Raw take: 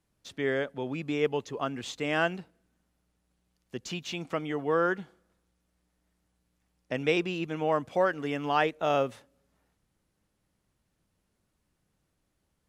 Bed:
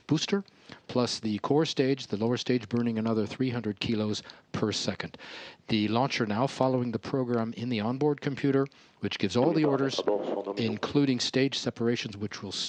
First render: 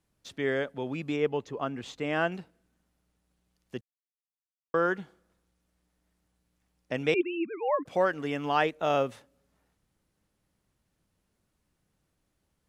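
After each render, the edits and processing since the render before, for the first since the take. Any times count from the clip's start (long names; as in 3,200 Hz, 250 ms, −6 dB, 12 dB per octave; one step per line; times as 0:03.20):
0:01.16–0:02.32: high-shelf EQ 3,000 Hz −8.5 dB
0:03.81–0:04.74: silence
0:07.14–0:07.86: three sine waves on the formant tracks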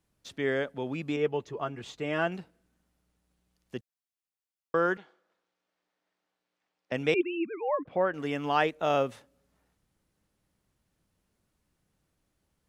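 0:01.16–0:02.27: notch comb filter 260 Hz
0:04.97–0:06.92: band-pass filter 450–4,500 Hz
0:07.61–0:08.14: high-frequency loss of the air 480 metres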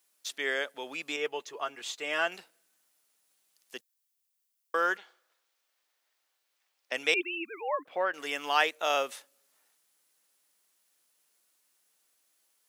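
high-pass filter 350 Hz 12 dB per octave
spectral tilt +4 dB per octave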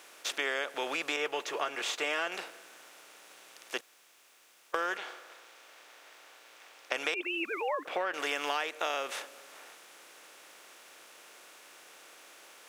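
compressor on every frequency bin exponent 0.6
downward compressor 10 to 1, threshold −28 dBFS, peak gain reduction 11.5 dB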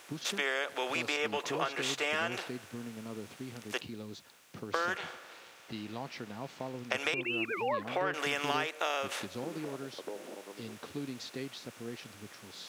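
mix in bed −15 dB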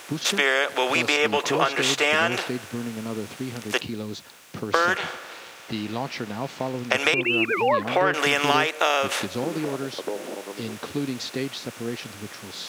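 level +11.5 dB
brickwall limiter −2 dBFS, peak gain reduction 1 dB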